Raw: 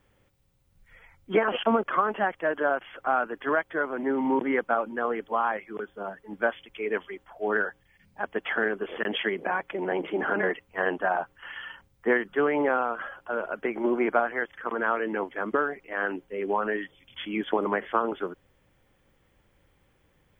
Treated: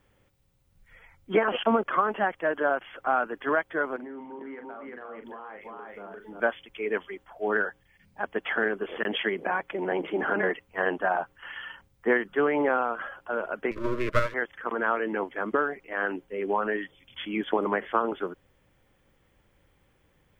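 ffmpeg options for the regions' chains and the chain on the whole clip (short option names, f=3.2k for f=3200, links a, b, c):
-filter_complex "[0:a]asettb=1/sr,asplit=3[a][b][c];[a]atrim=end=3.964[d];[b]atrim=start=3.96:end=6.4,asetpts=PTS-STARTPTS,afade=t=in:d=0.004:c=qsin,afade=t=out:st=2.436:d=0.004:c=qsin,aecho=1:1:348:0.531,atrim=end_sample=107604,acompressor=threshold=-38dB:ratio=10:attack=3.2:release=140:knee=1:detection=peak,asplit=2[e][f];[f]adelay=40,volume=-7.5dB[g];[e][g]amix=inputs=2:normalize=0,atrim=end_sample=107604[h];[c]atrim=start=6.396[i];[d][h]acrossfade=d=0.004:c1=hsin:c2=qsin[j];[j][i]acrossfade=d=0.004:c1=qsin:c2=hsin,asettb=1/sr,asplit=3[k][l][m];[k]atrim=end=13.714[n];[l]atrim=start=13.71:end=14.34,asetpts=PTS-STARTPTS,afade=t=in:d=0.004:c=qsin,afade=t=out:st=0.626:d=0.004:c=qsin,equalizer=f=650:t=o:w=0.4:g=9.5,aeval=exprs='max(val(0),0)':c=same,asuperstop=centerf=770:order=20:qfactor=2.4[o];[m]atrim=start=14.336[p];[n][o]acrossfade=d=0.004:c1=hsin:c2=qsin[q];[q][p]acrossfade=d=0.004:c1=qsin:c2=hsin"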